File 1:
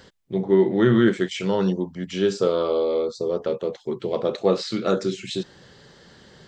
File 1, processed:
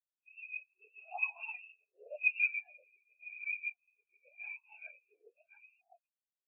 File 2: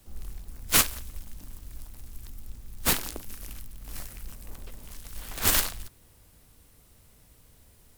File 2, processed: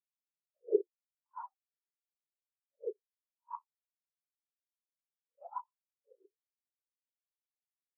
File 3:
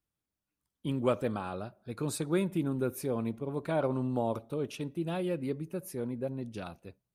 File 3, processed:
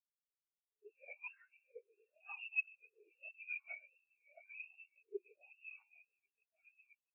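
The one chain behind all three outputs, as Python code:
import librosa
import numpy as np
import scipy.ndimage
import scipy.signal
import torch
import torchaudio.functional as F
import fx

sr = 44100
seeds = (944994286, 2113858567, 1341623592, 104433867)

p1 = fx.spec_swells(x, sr, rise_s=0.57)
p2 = scipy.signal.sosfilt(scipy.signal.butter(4, 130.0, 'highpass', fs=sr, output='sos'), p1)
p3 = fx.notch(p2, sr, hz=790.0, q=12.0)
p4 = fx.leveller(p3, sr, passes=3)
p5 = p4 * (1.0 - 0.47 / 2.0 + 0.47 / 2.0 * np.cos(2.0 * np.pi * 7.0 * (np.arange(len(p4)) / sr)))
p6 = fx.freq_invert(p5, sr, carrier_hz=2900)
p7 = fx.whisperise(p6, sr, seeds[0])
p8 = p7 + fx.echo_single(p7, sr, ms=669, db=-3.5, dry=0)
p9 = fx.wah_lfo(p8, sr, hz=0.92, low_hz=400.0, high_hz=1000.0, q=3.9)
p10 = fx.spectral_expand(p9, sr, expansion=4.0)
y = F.gain(torch.from_numpy(p10), 1.0).numpy()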